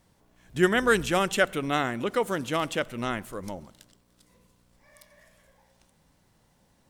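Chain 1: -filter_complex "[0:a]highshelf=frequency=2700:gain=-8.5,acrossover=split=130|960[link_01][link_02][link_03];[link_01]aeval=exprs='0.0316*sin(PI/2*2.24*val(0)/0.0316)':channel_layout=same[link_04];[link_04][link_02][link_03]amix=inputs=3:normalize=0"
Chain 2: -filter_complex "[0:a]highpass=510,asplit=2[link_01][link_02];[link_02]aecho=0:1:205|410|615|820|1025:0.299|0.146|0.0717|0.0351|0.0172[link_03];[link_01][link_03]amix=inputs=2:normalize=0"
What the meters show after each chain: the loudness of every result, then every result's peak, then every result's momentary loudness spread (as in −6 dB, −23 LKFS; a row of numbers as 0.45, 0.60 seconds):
−27.0, −28.0 LKFS; −8.0, −8.0 dBFS; 13, 15 LU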